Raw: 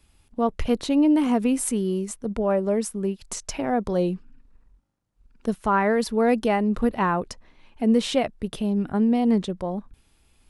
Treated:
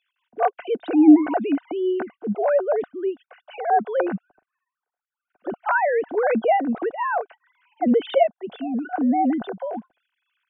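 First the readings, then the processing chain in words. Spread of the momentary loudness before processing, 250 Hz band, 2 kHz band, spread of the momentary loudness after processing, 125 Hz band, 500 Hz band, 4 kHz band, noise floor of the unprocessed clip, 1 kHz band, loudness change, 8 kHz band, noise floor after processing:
10 LU, +1.0 dB, +4.0 dB, 14 LU, -11.0 dB, +2.5 dB, no reading, -62 dBFS, +4.5 dB, +2.0 dB, under -40 dB, under -85 dBFS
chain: formants replaced by sine waves; small resonant body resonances 720/1500 Hz, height 12 dB, ringing for 25 ms

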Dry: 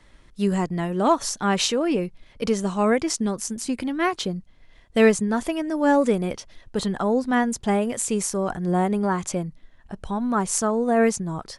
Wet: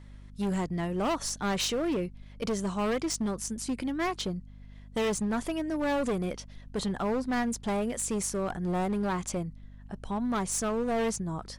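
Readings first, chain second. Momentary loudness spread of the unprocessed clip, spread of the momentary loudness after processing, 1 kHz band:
11 LU, 7 LU, -8.5 dB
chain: overload inside the chain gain 20.5 dB; hum 50 Hz, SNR 17 dB; trim -5 dB

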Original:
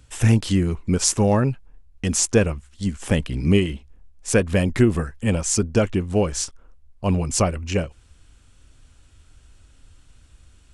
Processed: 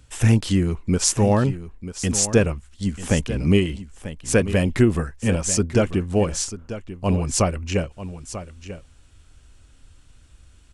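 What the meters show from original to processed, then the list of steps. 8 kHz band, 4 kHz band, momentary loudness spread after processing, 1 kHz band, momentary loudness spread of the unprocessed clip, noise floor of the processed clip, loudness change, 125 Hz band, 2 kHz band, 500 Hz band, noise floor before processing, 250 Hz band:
0.0 dB, 0.0 dB, 16 LU, 0.0 dB, 10 LU, -52 dBFS, 0.0 dB, 0.0 dB, 0.0 dB, 0.0 dB, -54 dBFS, 0.0 dB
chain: delay 941 ms -13 dB

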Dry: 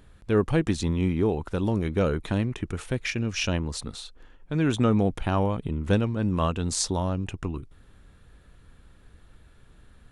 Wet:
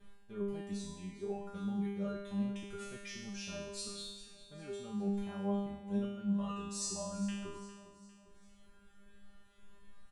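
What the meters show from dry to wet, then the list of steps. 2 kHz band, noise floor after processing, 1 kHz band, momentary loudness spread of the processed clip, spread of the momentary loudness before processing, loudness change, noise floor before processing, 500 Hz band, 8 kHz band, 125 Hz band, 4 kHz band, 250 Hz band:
-17.0 dB, -60 dBFS, -15.0 dB, 13 LU, 10 LU, -13.0 dB, -55 dBFS, -14.0 dB, -9.5 dB, -18.0 dB, -12.0 dB, -10.5 dB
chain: reverb removal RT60 1.8 s; gate with hold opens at -49 dBFS; dynamic bell 2.2 kHz, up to -5 dB, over -43 dBFS, Q 0.82; harmonic-percussive split percussive -4 dB; reverse; compression 10:1, threshold -34 dBFS, peak gain reduction 16 dB; reverse; feedback comb 200 Hz, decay 1 s, mix 100%; on a send: feedback delay 403 ms, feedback 46%, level -15 dB; on the sum: trim +17.5 dB

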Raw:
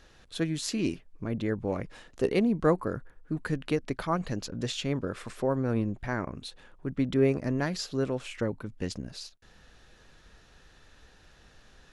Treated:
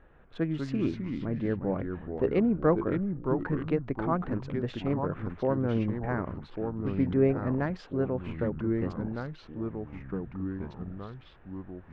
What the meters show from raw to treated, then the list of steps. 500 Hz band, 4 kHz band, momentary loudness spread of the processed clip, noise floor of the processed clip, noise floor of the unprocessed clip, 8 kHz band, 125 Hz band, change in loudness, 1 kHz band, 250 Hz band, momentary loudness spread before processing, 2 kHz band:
+0.5 dB, -12.5 dB, 14 LU, -53 dBFS, -58 dBFS, under -20 dB, +2.0 dB, 0.0 dB, +1.0 dB, +1.5 dB, 13 LU, -3.0 dB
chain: local Wiener filter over 9 samples; ever faster or slower copies 120 ms, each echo -3 st, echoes 3, each echo -6 dB; low-pass 1.8 kHz 12 dB/octave

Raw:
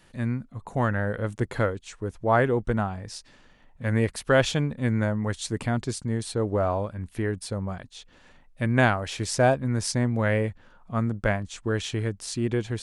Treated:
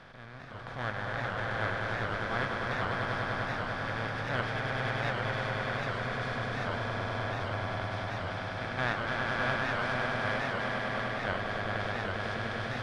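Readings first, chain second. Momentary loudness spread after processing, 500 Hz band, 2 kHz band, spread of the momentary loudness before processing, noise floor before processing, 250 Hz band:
5 LU, -8.5 dB, 0.0 dB, 11 LU, -56 dBFS, -12.0 dB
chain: spectral levelling over time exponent 0.2; gate -13 dBFS, range -8 dB; amplifier tone stack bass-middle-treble 5-5-5; level rider gain up to 7.5 dB; distance through air 340 m; echo with a slow build-up 100 ms, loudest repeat 5, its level -4 dB; warped record 78 rpm, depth 160 cents; trim -7 dB

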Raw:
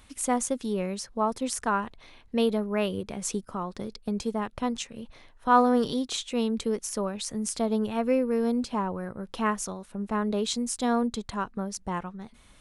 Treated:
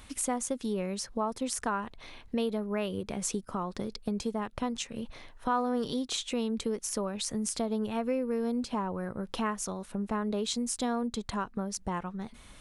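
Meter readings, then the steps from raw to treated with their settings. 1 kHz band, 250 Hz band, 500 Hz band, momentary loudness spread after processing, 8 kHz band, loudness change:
-6.0 dB, -4.0 dB, -5.0 dB, 6 LU, -1.5 dB, -4.5 dB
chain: compression 2.5:1, threshold -36 dBFS, peak gain reduction 14.5 dB; trim +4 dB

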